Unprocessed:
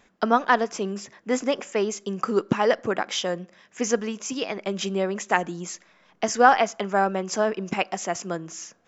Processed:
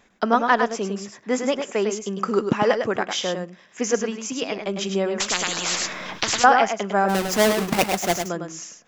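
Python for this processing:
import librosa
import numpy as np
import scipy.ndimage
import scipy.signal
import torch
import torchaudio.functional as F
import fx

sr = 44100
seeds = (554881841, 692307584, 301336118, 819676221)

y = fx.halfwave_hold(x, sr, at=(7.08, 8.17), fade=0.02)
y = y + 10.0 ** (-6.5 / 20.0) * np.pad(y, (int(103 * sr / 1000.0), 0))[:len(y)]
y = fx.spectral_comp(y, sr, ratio=10.0, at=(5.2, 6.44))
y = y * 10.0 ** (1.0 / 20.0)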